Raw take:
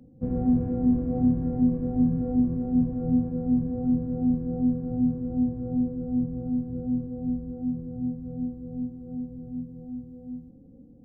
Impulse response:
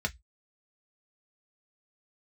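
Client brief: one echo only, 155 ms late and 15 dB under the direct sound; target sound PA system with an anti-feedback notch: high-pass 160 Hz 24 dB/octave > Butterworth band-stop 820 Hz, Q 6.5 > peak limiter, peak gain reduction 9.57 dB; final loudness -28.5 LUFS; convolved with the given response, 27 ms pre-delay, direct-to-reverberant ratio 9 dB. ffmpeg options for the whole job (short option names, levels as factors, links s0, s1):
-filter_complex "[0:a]aecho=1:1:155:0.178,asplit=2[s0][s1];[1:a]atrim=start_sample=2205,adelay=27[s2];[s1][s2]afir=irnorm=-1:irlink=0,volume=0.188[s3];[s0][s3]amix=inputs=2:normalize=0,highpass=f=160:w=0.5412,highpass=f=160:w=1.3066,asuperstop=centerf=820:order=8:qfactor=6.5,volume=1.68,alimiter=limit=0.0944:level=0:latency=1"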